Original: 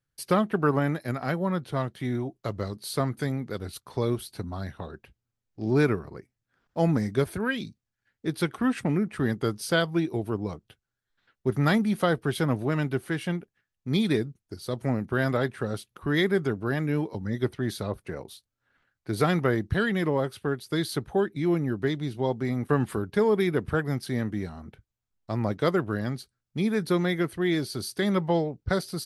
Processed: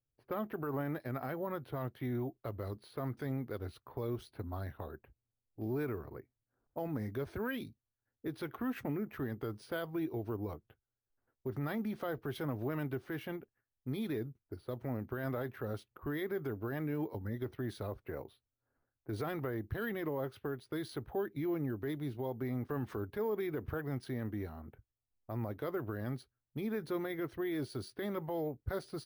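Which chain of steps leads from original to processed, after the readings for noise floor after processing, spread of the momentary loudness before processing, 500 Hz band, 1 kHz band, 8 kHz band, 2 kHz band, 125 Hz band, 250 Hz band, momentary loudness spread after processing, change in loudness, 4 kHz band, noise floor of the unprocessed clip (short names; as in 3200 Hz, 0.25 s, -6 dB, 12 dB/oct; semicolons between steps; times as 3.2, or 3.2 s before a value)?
under -85 dBFS, 11 LU, -11.0 dB, -12.0 dB, under -15 dB, -13.5 dB, -11.5 dB, -11.5 dB, 7 LU, -12.0 dB, -17.0 dB, -85 dBFS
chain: limiter -22 dBFS, peak gain reduction 11.5 dB; LPF 1700 Hz 6 dB/oct; bell 180 Hz -14 dB 0.31 oct; low-pass opened by the level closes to 760 Hz, open at -31 dBFS; careless resampling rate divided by 3×, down none, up hold; gain -4.5 dB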